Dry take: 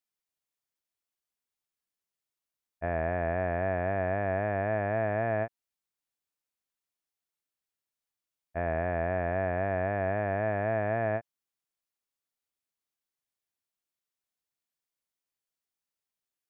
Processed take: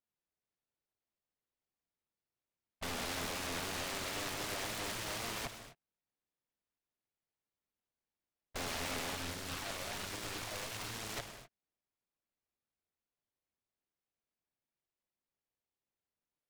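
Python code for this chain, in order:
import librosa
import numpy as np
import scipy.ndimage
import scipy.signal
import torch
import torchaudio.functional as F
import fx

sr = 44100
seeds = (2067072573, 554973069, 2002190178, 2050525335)

y = fx.high_shelf(x, sr, hz=2500.0, db=-11.0)
y = (np.mod(10.0 ** (35.0 / 20.0) * y + 1.0, 2.0) - 1.0) / 10.0 ** (35.0 / 20.0)
y = fx.air_absorb(y, sr, metres=140.0)
y = fx.rev_gated(y, sr, seeds[0], gate_ms=280, shape='flat', drr_db=7.0)
y = fx.phaser_stages(y, sr, stages=12, low_hz=260.0, high_hz=1300.0, hz=1.2, feedback_pct=45, at=(9.15, 11.15), fade=0.02)
y = fx.noise_mod_delay(y, sr, seeds[1], noise_hz=1200.0, depth_ms=0.19)
y = y * librosa.db_to_amplitude(2.5)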